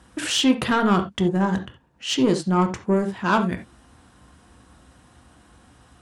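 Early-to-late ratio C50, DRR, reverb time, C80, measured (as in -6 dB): 11.5 dB, 6.0 dB, no single decay rate, 19.5 dB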